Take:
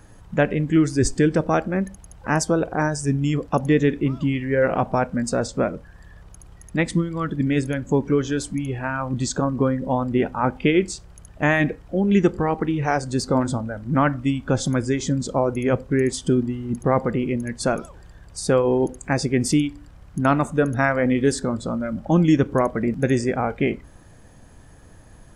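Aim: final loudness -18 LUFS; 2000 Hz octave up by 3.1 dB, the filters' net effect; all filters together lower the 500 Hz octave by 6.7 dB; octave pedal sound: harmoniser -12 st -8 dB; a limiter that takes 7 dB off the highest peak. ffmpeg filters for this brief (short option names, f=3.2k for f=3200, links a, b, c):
-filter_complex "[0:a]equalizer=f=500:t=o:g=-9,equalizer=f=2k:t=o:g=4.5,alimiter=limit=-12.5dB:level=0:latency=1,asplit=2[a][b];[b]asetrate=22050,aresample=44100,atempo=2,volume=-8dB[c];[a][c]amix=inputs=2:normalize=0,volume=7dB"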